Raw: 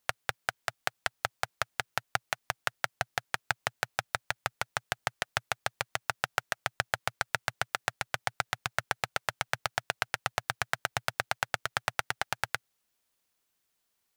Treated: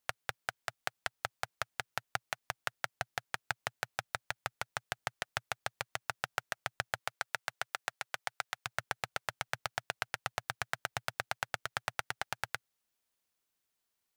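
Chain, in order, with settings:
0:07.01–0:08.65: high-pass filter 310 Hz → 630 Hz 6 dB per octave
level −5.5 dB

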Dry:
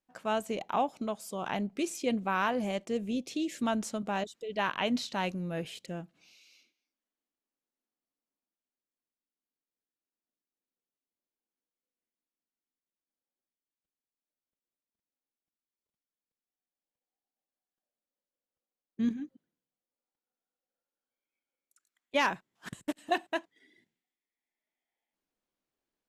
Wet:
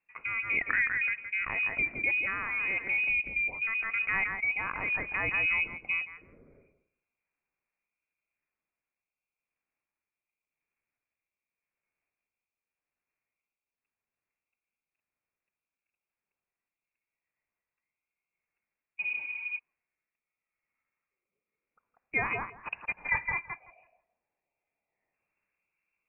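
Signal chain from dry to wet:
feedback echo with a high-pass in the loop 166 ms, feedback 17%, high-pass 710 Hz, level −8.5 dB
in parallel at +1.5 dB: compressor whose output falls as the input rises −35 dBFS, ratio −0.5
on the sum: rotating-speaker cabinet horn 0.9 Hz
healed spectral selection 0:19.05–0:19.56, 220–1,800 Hz before
voice inversion scrambler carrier 2,700 Hz

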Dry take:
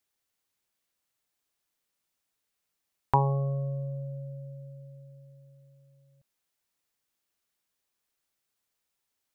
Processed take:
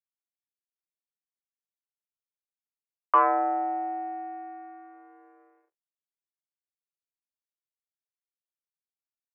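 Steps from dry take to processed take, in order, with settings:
mid-hump overdrive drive 24 dB, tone 1,400 Hz, clips at −8.5 dBFS
slack as between gear wheels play −39 dBFS
single-sideband voice off tune +190 Hz 190–2,000 Hz

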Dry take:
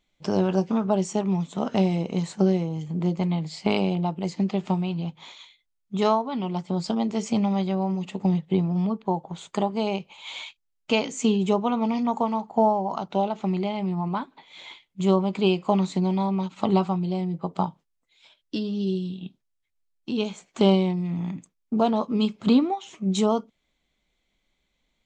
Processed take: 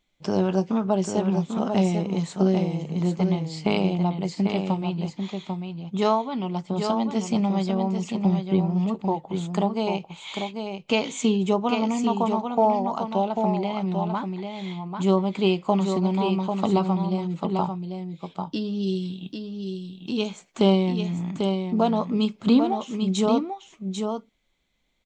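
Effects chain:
0:18.82–0:20.26: high-shelf EQ 3,400 Hz → 5,600 Hz +9 dB
single-tap delay 794 ms −6 dB

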